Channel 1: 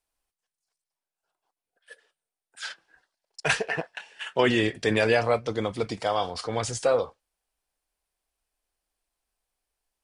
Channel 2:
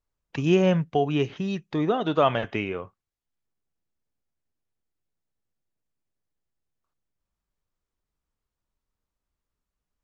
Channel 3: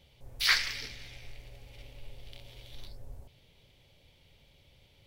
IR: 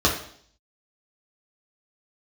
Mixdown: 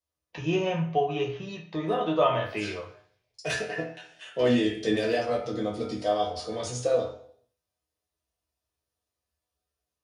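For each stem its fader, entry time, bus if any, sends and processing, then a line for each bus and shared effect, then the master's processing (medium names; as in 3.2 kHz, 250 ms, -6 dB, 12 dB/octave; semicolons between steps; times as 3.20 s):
-4.5 dB, 0.00 s, send -10.5 dB, treble shelf 8.5 kHz +6 dB; level rider gain up to 4 dB; hard clipper -9.5 dBFS, distortion -26 dB
+2.0 dB, 0.00 s, send -14.5 dB, fifteen-band graphic EQ 250 Hz -10 dB, 1 kHz +9 dB, 2.5 kHz +5 dB
-19.5 dB, 2.05 s, no send, none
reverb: on, RT60 0.60 s, pre-delay 3 ms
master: high-pass 55 Hz; peaking EQ 1.1 kHz -13 dB 0.2 oct; chord resonator E2 major, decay 0.26 s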